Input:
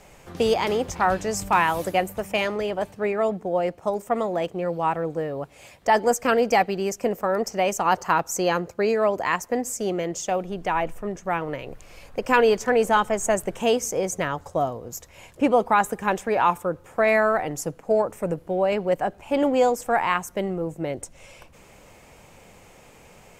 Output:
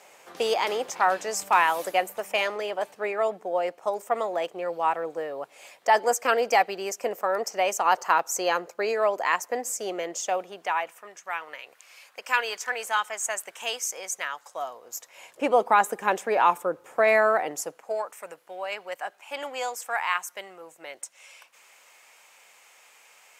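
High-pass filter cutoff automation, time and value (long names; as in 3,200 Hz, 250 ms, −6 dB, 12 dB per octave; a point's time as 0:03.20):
0:10.33 530 Hz
0:11.15 1,300 Hz
0:14.48 1,300 Hz
0:15.69 360 Hz
0:17.42 360 Hz
0:18.09 1,200 Hz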